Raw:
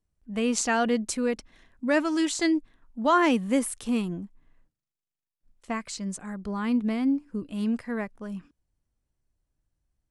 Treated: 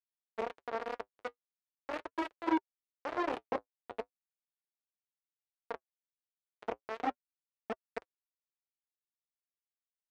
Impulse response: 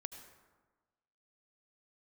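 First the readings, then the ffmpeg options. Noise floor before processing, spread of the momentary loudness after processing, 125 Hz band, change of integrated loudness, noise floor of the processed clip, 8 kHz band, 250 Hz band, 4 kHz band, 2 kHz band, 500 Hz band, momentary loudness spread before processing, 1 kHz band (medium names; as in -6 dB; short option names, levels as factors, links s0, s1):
under -85 dBFS, 13 LU, -24.5 dB, -12.5 dB, under -85 dBFS, under -30 dB, -17.0 dB, -17.0 dB, -13.0 dB, -11.0 dB, 13 LU, -8.5 dB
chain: -filter_complex "[0:a]bass=f=250:g=-2,treble=f=4000:g=-5,acrossover=split=350|950|3500[s0][s1][s2][s3];[s0]acompressor=threshold=0.0355:ratio=4[s4];[s1]acompressor=threshold=0.01:ratio=4[s5];[s2]acompressor=threshold=0.00708:ratio=4[s6];[s3]acompressor=threshold=0.01:ratio=4[s7];[s4][s5][s6][s7]amix=inputs=4:normalize=0,bandreject=f=50:t=h:w=6,bandreject=f=100:t=h:w=6,bandreject=f=150:t=h:w=6,bandreject=f=200:t=h:w=6,aecho=1:1:31|69:0.355|0.447,acrusher=bits=3:mix=0:aa=0.000001,aeval=exprs='0.15*sin(PI/2*2.24*val(0)/0.15)':c=same,acrossover=split=1600[s8][s9];[s8]aeval=exprs='val(0)*(1-0.5/2+0.5/2*cos(2*PI*2.8*n/s))':c=same[s10];[s9]aeval=exprs='val(0)*(1-0.5/2-0.5/2*cos(2*PI*2.8*n/s))':c=same[s11];[s10][s11]amix=inputs=2:normalize=0,highpass=50,flanger=delay=3.8:depth=5.6:regen=-48:speed=0.39:shape=sinusoidal,adynamicsmooth=sensitivity=6:basefreq=910,lowshelf=f=300:t=q:w=1.5:g=-11,volume=5.96"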